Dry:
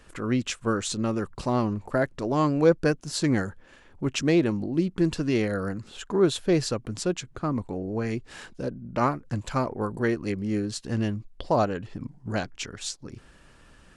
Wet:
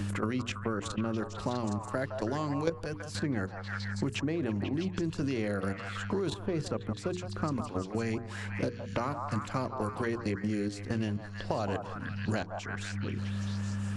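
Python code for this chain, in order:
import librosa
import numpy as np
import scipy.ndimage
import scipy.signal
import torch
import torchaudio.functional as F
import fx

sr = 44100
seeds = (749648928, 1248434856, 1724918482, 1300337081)

y = fx.dmg_buzz(x, sr, base_hz=100.0, harmonics=3, level_db=-38.0, tilt_db=-8, odd_only=False)
y = fx.level_steps(y, sr, step_db=15)
y = fx.hum_notches(y, sr, base_hz=60, count=8)
y = fx.echo_stepped(y, sr, ms=163, hz=880.0, octaves=0.7, feedback_pct=70, wet_db=-4)
y = fx.band_squash(y, sr, depth_pct=100)
y = y * 10.0 ** (-1.0 / 20.0)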